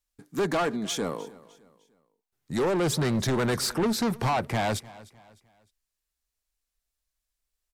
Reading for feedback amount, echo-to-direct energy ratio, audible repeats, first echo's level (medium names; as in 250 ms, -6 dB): 38%, -20.0 dB, 2, -20.5 dB